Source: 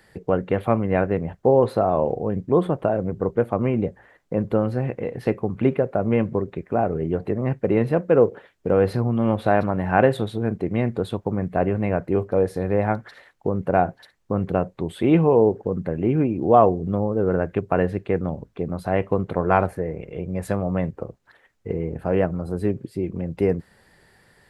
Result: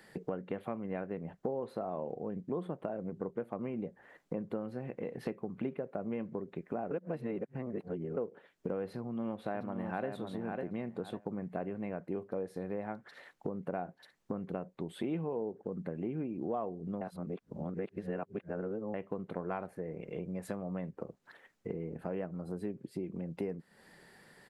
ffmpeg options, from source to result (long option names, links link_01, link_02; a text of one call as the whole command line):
ffmpeg -i in.wav -filter_complex "[0:a]asplit=2[link_01][link_02];[link_02]afade=type=in:start_time=8.99:duration=0.01,afade=type=out:start_time=10.08:duration=0.01,aecho=0:1:550|1100|1650:0.473151|0.0946303|0.0189261[link_03];[link_01][link_03]amix=inputs=2:normalize=0,asplit=5[link_04][link_05][link_06][link_07][link_08];[link_04]atrim=end=6.912[link_09];[link_05]atrim=start=6.908:end=8.172,asetpts=PTS-STARTPTS,areverse[link_10];[link_06]atrim=start=8.168:end=17.012[link_11];[link_07]atrim=start=17.008:end=18.942,asetpts=PTS-STARTPTS,areverse[link_12];[link_08]atrim=start=18.938[link_13];[link_09][link_10]acrossfade=duration=0.004:curve1=hsin:curve2=hsin[link_14];[link_14][link_11]acrossfade=duration=0.004:curve1=hsin:curve2=hsin[link_15];[link_15][link_12]acrossfade=duration=0.004:curve1=hsin:curve2=hsin[link_16];[link_16][link_13]acrossfade=duration=0.004:curve1=hsin:curve2=hsin,acompressor=threshold=-35dB:ratio=4,lowshelf=frequency=130:width_type=q:width=1.5:gain=-9,volume=-2.5dB" out.wav